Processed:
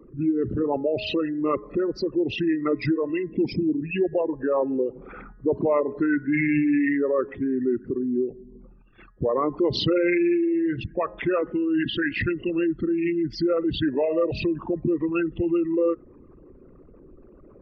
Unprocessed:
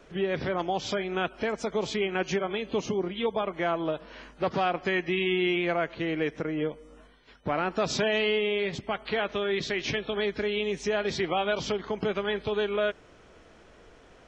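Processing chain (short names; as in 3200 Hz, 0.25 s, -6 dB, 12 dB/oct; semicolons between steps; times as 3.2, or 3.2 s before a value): formant sharpening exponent 3; de-hum 258.7 Hz, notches 9; varispeed -19%; gain +5 dB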